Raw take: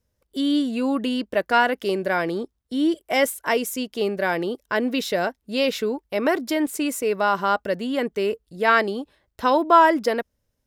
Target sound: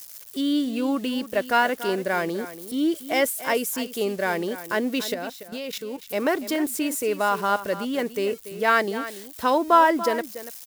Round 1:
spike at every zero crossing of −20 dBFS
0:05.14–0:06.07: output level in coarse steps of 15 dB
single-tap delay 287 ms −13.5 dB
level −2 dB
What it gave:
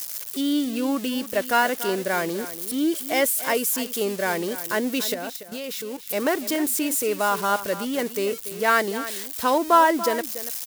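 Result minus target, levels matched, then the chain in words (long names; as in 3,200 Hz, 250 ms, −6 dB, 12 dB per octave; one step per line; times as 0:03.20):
spike at every zero crossing: distortion +9 dB
spike at every zero crossing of −29.5 dBFS
0:05.14–0:06.07: output level in coarse steps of 15 dB
single-tap delay 287 ms −13.5 dB
level −2 dB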